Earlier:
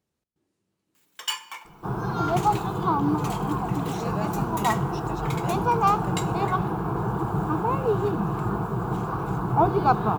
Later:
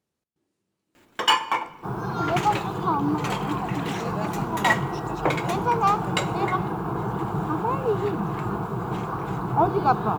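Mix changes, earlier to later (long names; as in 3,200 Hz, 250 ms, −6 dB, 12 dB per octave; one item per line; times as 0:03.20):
first sound: remove first difference
master: add low-shelf EQ 90 Hz −7 dB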